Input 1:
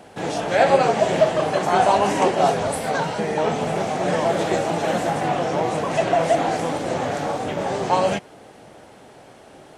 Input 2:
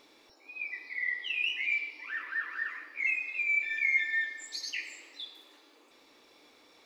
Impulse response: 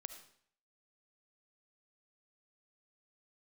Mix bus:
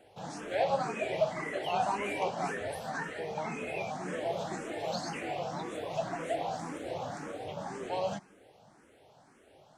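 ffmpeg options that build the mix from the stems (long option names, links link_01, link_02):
-filter_complex "[0:a]volume=-13.5dB,asplit=2[link_01][link_02];[link_02]volume=-7.5dB[link_03];[1:a]acompressor=threshold=-40dB:ratio=6,adelay=400,volume=-1dB,asplit=3[link_04][link_05][link_06];[link_04]atrim=end=3.91,asetpts=PTS-STARTPTS,afade=type=out:start_time=3.906:duration=0.004:curve=hsin[link_07];[link_05]atrim=start=3.91:end=4.71,asetpts=PTS-STARTPTS,volume=0[link_08];[link_06]atrim=start=4.71,asetpts=PTS-STARTPTS,afade=type=in:duration=0.004:curve=hsin[link_09];[link_07][link_08][link_09]concat=n=3:v=0:a=1,asplit=2[link_10][link_11];[link_11]volume=-6.5dB[link_12];[2:a]atrim=start_sample=2205[link_13];[link_03][link_12]amix=inputs=2:normalize=0[link_14];[link_14][link_13]afir=irnorm=-1:irlink=0[link_15];[link_01][link_10][link_15]amix=inputs=3:normalize=0,asplit=2[link_16][link_17];[link_17]afreqshift=1.9[link_18];[link_16][link_18]amix=inputs=2:normalize=1"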